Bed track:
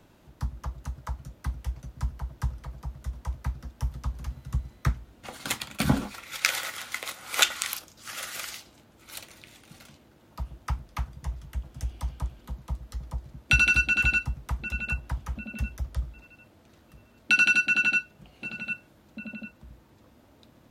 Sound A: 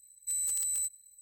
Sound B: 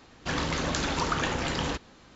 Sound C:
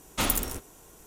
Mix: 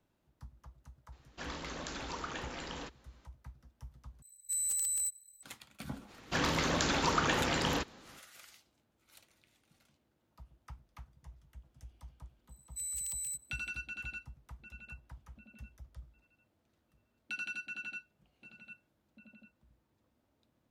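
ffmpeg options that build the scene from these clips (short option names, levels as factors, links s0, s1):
-filter_complex "[2:a]asplit=2[s0][s1];[1:a]asplit=2[s2][s3];[0:a]volume=0.106[s4];[s0]equalizer=f=110:w=1.5:g=-10.5[s5];[s1]lowshelf=f=75:g=-7.5[s6];[s3]highpass=f=2300:t=q:w=1.9[s7];[s4]asplit=2[s8][s9];[s8]atrim=end=4.224[s10];[s2]atrim=end=1.21,asetpts=PTS-STARTPTS,volume=0.841[s11];[s9]atrim=start=5.426[s12];[s5]atrim=end=2.15,asetpts=PTS-STARTPTS,volume=0.237,afade=t=in:d=0.004:c=hsin,afade=t=out:st=2.146:d=0.004:c=hsin,adelay=1120[s13];[s6]atrim=end=2.15,asetpts=PTS-STARTPTS,volume=0.841,afade=t=in:d=0.05,afade=t=out:st=2.1:d=0.05,adelay=6060[s14];[s7]atrim=end=1.21,asetpts=PTS-STARTPTS,volume=0.422,afade=t=in:d=0.004:c=hsin,afade=t=out:st=1.206:d=0.004:c=hsin,adelay=12490[s15];[s10][s11]acrossfade=d=0.004:c1=hsin:c2=hsin[s16];[s16][s12]acrossfade=d=0.004:c1=hsin:c2=hsin[s17];[s17][s13][s14][s15]amix=inputs=4:normalize=0"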